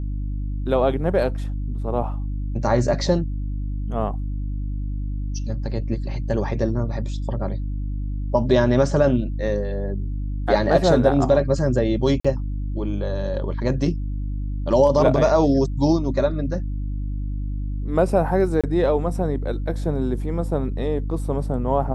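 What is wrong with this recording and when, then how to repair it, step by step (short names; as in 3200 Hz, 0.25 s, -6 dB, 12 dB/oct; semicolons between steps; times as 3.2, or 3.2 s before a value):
hum 50 Hz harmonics 6 -26 dBFS
12.2–12.24 gap 45 ms
18.61–18.64 gap 26 ms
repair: de-hum 50 Hz, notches 6; interpolate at 12.2, 45 ms; interpolate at 18.61, 26 ms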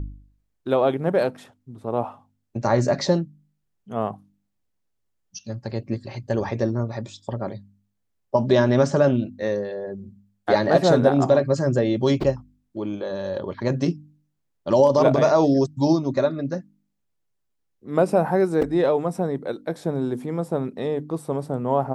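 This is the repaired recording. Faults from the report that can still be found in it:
none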